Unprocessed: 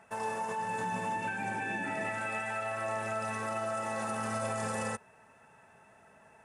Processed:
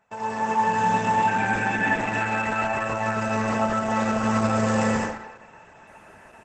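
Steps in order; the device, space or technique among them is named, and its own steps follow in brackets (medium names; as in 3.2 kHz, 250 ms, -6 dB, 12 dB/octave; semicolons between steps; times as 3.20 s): speakerphone in a meeting room (reverberation RT60 0.70 s, pre-delay 82 ms, DRR -1 dB; speakerphone echo 300 ms, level -17 dB; level rider gain up to 6.5 dB; gate -52 dBFS, range -10 dB; trim +2.5 dB; Opus 12 kbps 48 kHz)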